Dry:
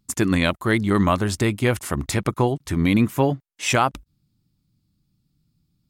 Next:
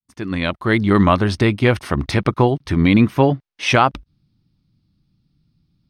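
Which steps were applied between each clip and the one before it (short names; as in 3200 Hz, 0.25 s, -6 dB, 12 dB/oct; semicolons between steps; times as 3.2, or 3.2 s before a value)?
opening faded in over 0.89 s; polynomial smoothing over 15 samples; gain +5 dB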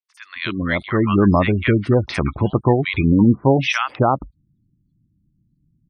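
three bands offset in time mids, highs, lows 50/270 ms, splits 1200/5300 Hz; spectral gate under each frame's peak -25 dB strong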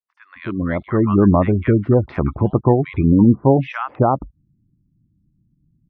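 LPF 1100 Hz 12 dB/oct; gain +1.5 dB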